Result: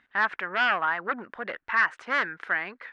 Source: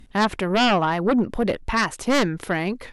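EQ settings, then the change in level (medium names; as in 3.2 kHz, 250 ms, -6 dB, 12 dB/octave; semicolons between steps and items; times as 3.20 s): band-pass filter 1.6 kHz, Q 3.1; distance through air 71 m; +5.0 dB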